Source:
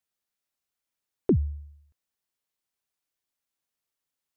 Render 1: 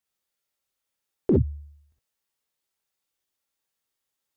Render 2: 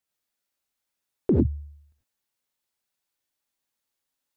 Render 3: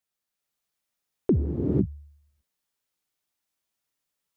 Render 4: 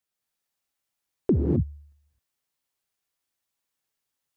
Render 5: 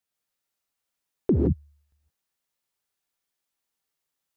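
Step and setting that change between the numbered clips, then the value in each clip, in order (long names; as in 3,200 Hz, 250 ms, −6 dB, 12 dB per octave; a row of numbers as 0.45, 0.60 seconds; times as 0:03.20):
reverb whose tail is shaped and stops, gate: 80, 120, 520, 280, 190 milliseconds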